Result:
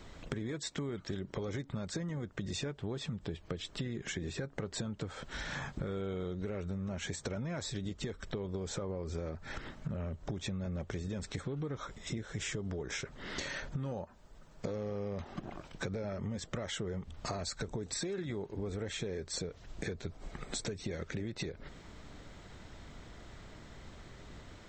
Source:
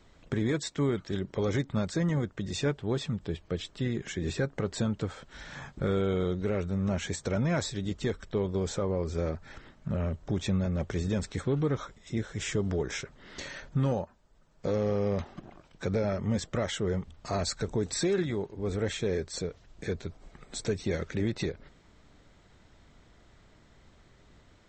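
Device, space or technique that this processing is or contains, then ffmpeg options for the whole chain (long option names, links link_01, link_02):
serial compression, leveller first: -af "acompressor=threshold=-32dB:ratio=3,acompressor=threshold=-44dB:ratio=5,volume=7.5dB"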